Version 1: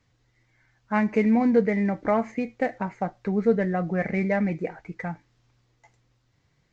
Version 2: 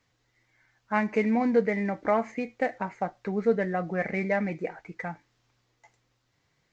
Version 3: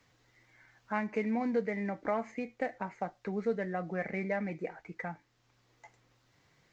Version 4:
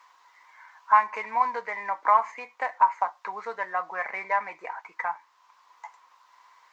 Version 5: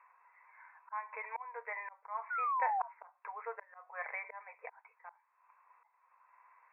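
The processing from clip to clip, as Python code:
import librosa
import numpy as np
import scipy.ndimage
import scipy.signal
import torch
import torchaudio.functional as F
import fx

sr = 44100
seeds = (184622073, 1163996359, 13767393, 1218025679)

y1 = fx.low_shelf(x, sr, hz=230.0, db=-10.0)
y2 = fx.band_squash(y1, sr, depth_pct=40)
y2 = y2 * librosa.db_to_amplitude(-7.0)
y3 = fx.highpass_res(y2, sr, hz=1000.0, q=12.0)
y3 = y3 * librosa.db_to_amplitude(5.5)
y4 = fx.spec_paint(y3, sr, seeds[0], shape='fall', start_s=2.3, length_s=0.58, low_hz=670.0, high_hz=1500.0, level_db=-26.0)
y4 = fx.auto_swell(y4, sr, attack_ms=398.0)
y4 = fx.brickwall_bandpass(y4, sr, low_hz=420.0, high_hz=2700.0)
y4 = y4 * librosa.db_to_amplitude(-7.0)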